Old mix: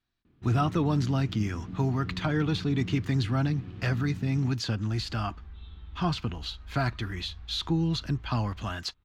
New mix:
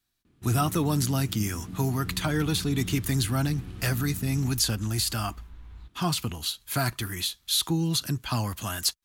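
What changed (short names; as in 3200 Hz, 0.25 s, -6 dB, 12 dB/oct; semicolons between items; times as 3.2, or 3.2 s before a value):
second sound: entry -2.85 s; master: remove air absorption 200 m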